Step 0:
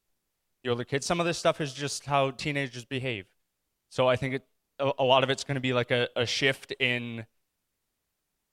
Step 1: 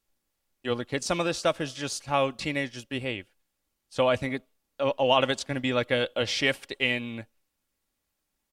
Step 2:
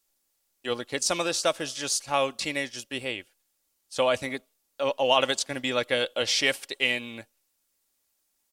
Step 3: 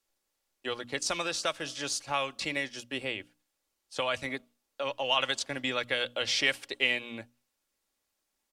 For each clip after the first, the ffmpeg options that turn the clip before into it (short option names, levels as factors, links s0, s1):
-af "aecho=1:1:3.6:0.33"
-af "bass=f=250:g=-9,treble=f=4000:g=9"
-filter_complex "[0:a]lowpass=f=3400:p=1,bandreject=f=60:t=h:w=6,bandreject=f=120:t=h:w=6,bandreject=f=180:t=h:w=6,bandreject=f=240:t=h:w=6,bandreject=f=300:t=h:w=6,acrossover=split=110|1100[s0][s1][s2];[s1]acompressor=threshold=0.02:ratio=6[s3];[s0][s3][s2]amix=inputs=3:normalize=0"